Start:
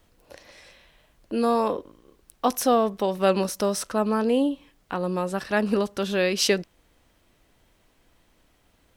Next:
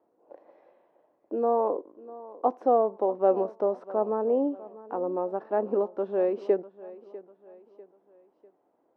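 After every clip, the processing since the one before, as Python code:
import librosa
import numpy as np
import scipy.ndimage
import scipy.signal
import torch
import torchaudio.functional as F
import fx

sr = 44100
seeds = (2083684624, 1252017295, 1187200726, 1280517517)

y = scipy.signal.sosfilt(scipy.signal.cheby1(2, 1.0, [330.0, 840.0], 'bandpass', fs=sr, output='sos'), x)
y = fx.echo_feedback(y, sr, ms=647, feedback_pct=42, wet_db=-18.5)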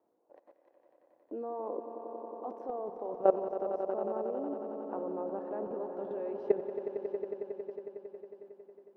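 y = fx.level_steps(x, sr, step_db=19)
y = fx.echo_swell(y, sr, ms=91, loudest=5, wet_db=-12.0)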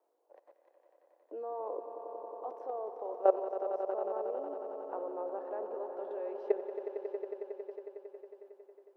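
y = scipy.signal.sosfilt(scipy.signal.butter(4, 400.0, 'highpass', fs=sr, output='sos'), x)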